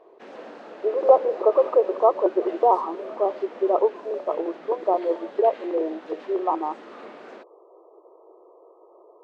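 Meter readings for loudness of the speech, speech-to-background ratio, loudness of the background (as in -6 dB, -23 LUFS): -23.0 LUFS, 20.0 dB, -43.0 LUFS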